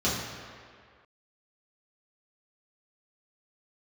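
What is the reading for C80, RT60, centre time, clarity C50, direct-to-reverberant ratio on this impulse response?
3.5 dB, 2.0 s, 88 ms, 1.0 dB, −9.0 dB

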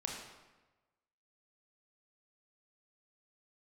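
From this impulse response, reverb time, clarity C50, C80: 1.2 s, 2.5 dB, 4.5 dB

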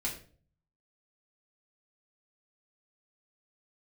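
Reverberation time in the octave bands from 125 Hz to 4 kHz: 0.90, 0.60, 0.50, 0.35, 0.35, 0.35 seconds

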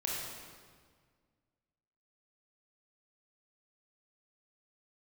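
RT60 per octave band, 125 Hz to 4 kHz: 2.2, 2.2, 1.8, 1.7, 1.5, 1.4 seconds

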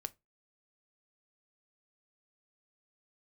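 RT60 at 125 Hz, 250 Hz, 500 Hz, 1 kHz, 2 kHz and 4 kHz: 0.25, 0.25, 0.20, 0.20, 0.15, 0.15 seconds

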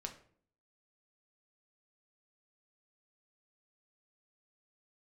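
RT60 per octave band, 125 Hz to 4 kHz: 0.70, 0.75, 0.60, 0.50, 0.45, 0.35 seconds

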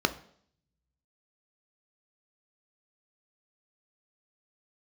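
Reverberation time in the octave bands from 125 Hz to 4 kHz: 1.5, 0.75, 0.65, 0.60, 0.55, 0.65 seconds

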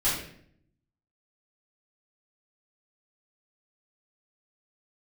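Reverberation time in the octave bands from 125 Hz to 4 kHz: 1.0, 0.95, 0.70, 0.55, 0.60, 0.50 seconds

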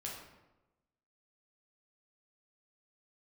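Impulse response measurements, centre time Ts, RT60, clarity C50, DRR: 51 ms, 1.0 s, 2.5 dB, −3.5 dB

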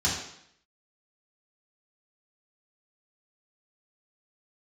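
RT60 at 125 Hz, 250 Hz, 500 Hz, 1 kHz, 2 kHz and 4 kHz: 0.70, 0.70, 0.70, 0.70, 0.75, 0.70 seconds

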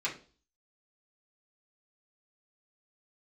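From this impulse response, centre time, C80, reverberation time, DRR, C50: 19 ms, 17.0 dB, 0.40 s, −6.0 dB, 10.5 dB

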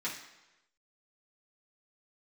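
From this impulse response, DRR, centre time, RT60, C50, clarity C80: −8.0 dB, 32 ms, 1.0 s, 6.0 dB, 9.0 dB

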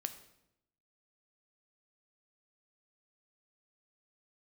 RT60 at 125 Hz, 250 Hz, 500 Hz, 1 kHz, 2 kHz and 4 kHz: 1.0, 0.95, 0.85, 0.75, 0.70, 0.65 seconds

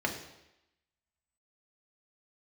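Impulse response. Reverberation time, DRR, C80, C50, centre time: 0.90 s, 0.5 dB, 10.5 dB, 8.0 dB, 21 ms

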